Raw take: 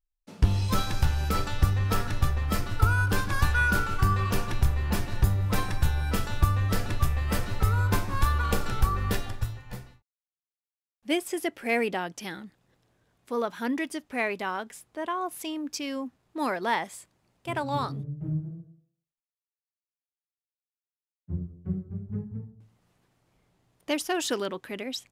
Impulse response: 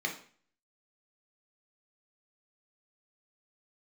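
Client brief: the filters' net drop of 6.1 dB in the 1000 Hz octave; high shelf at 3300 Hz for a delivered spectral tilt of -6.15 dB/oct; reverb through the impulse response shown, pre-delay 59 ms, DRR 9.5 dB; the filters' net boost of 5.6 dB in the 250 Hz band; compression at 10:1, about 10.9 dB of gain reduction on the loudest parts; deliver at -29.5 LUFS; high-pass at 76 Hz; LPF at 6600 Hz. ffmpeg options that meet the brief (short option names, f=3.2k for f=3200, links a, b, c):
-filter_complex "[0:a]highpass=76,lowpass=6.6k,equalizer=f=250:t=o:g=8,equalizer=f=1k:t=o:g=-8,highshelf=f=3.3k:g=-4.5,acompressor=threshold=-29dB:ratio=10,asplit=2[a][b];[1:a]atrim=start_sample=2205,adelay=59[c];[b][c]afir=irnorm=-1:irlink=0,volume=-15dB[d];[a][d]amix=inputs=2:normalize=0,volume=5.5dB"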